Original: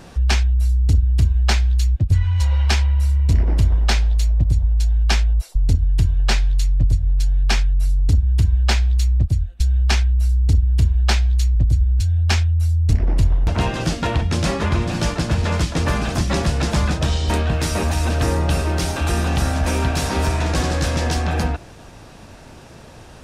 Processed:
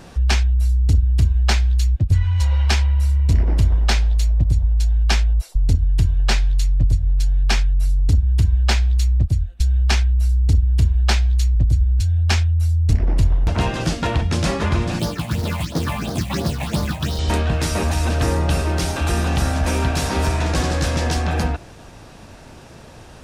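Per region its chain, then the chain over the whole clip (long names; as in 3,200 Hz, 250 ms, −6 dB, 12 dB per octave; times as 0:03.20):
0:14.99–0:17.19: high-pass filter 100 Hz + all-pass phaser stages 6, 2.9 Hz, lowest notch 360–2,500 Hz + floating-point word with a short mantissa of 2 bits
whole clip: no processing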